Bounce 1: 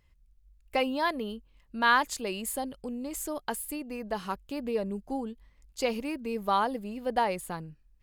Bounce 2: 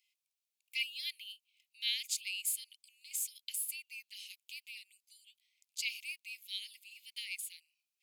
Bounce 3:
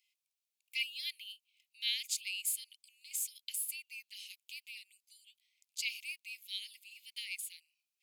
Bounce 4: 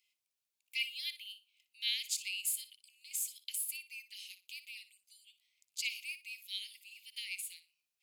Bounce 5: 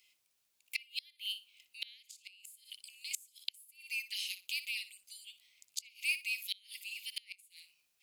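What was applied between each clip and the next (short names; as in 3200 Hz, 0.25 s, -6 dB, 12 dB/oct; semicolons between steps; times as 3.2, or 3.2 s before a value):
steep high-pass 2200 Hz 96 dB/oct; gain +1 dB
nothing audible
flutter echo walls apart 10.2 m, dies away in 0.26 s
flipped gate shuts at -31 dBFS, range -31 dB; gain +10 dB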